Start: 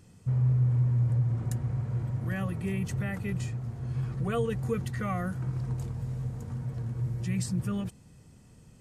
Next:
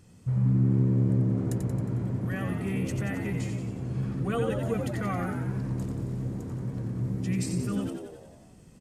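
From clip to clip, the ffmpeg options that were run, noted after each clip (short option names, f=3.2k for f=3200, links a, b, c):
-filter_complex "[0:a]asplit=9[a][b][c][d][e][f][g][h][i];[b]adelay=90,afreqshift=68,volume=-6dB[j];[c]adelay=180,afreqshift=136,volume=-10.4dB[k];[d]adelay=270,afreqshift=204,volume=-14.9dB[l];[e]adelay=360,afreqshift=272,volume=-19.3dB[m];[f]adelay=450,afreqshift=340,volume=-23.7dB[n];[g]adelay=540,afreqshift=408,volume=-28.2dB[o];[h]adelay=630,afreqshift=476,volume=-32.6dB[p];[i]adelay=720,afreqshift=544,volume=-37.1dB[q];[a][j][k][l][m][n][o][p][q]amix=inputs=9:normalize=0"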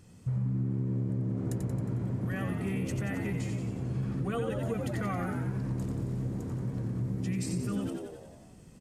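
-af "acompressor=threshold=-28dB:ratio=6"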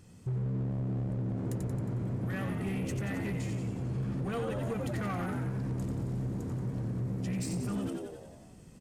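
-af "volume=29.5dB,asoftclip=hard,volume=-29.5dB"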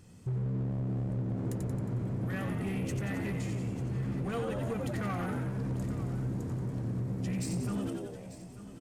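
-af "aecho=1:1:893:0.188"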